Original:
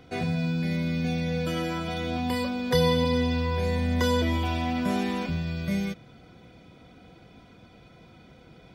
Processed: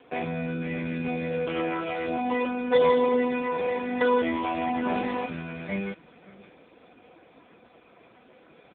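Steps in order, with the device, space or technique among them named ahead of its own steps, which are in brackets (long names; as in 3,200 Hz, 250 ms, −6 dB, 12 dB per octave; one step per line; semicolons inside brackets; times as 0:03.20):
high-pass filter 79 Hz 24 dB per octave
satellite phone (band-pass filter 320–3,400 Hz; single-tap delay 561 ms −20 dB; level +5.5 dB; AMR narrowband 5.15 kbit/s 8,000 Hz)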